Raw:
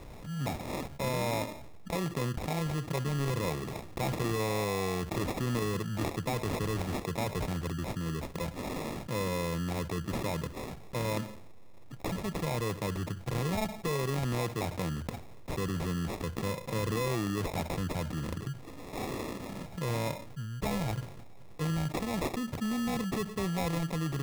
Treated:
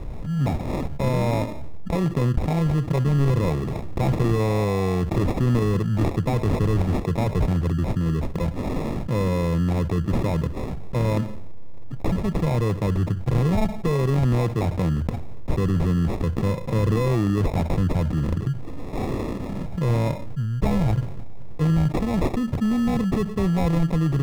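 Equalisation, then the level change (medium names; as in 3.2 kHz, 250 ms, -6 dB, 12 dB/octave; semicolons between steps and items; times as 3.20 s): tilt EQ -2.5 dB/octave; +5.5 dB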